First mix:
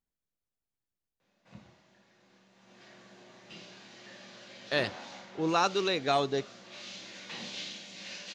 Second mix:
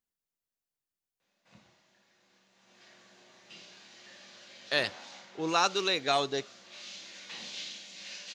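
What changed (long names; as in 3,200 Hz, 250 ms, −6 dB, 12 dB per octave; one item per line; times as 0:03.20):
background −4.0 dB
master: add spectral tilt +2 dB per octave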